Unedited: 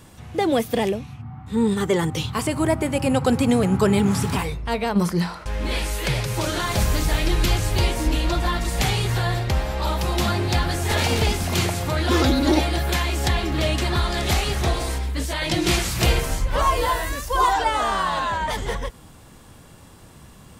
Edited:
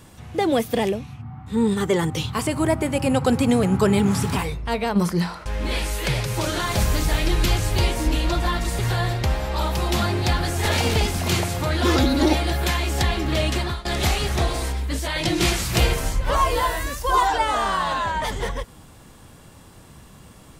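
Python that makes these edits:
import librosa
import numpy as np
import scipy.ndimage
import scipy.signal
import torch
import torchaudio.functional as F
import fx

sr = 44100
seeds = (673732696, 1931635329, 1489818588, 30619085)

y = fx.edit(x, sr, fx.cut(start_s=8.79, length_s=0.26),
    fx.fade_out_to(start_s=13.83, length_s=0.28, floor_db=-21.0), tone=tone)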